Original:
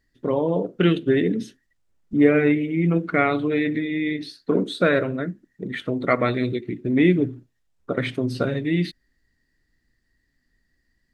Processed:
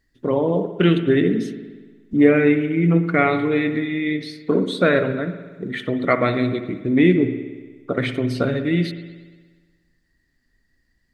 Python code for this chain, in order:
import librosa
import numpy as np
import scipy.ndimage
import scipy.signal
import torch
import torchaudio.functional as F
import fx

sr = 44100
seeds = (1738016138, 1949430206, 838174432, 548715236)

y = fx.rev_spring(x, sr, rt60_s=1.4, pass_ms=(59,), chirp_ms=60, drr_db=9.5)
y = y * 10.0 ** (2.0 / 20.0)